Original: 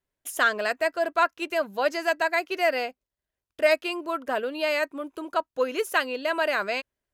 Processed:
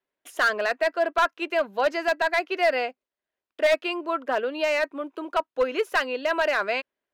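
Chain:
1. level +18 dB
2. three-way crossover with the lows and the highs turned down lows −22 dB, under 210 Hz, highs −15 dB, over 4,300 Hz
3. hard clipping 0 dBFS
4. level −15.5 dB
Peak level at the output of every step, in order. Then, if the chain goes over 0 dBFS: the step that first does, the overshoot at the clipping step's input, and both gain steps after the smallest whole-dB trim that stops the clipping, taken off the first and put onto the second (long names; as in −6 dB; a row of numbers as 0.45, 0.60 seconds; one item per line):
+8.5, +9.5, 0.0, −15.5 dBFS
step 1, 9.5 dB
step 1 +8 dB, step 4 −5.5 dB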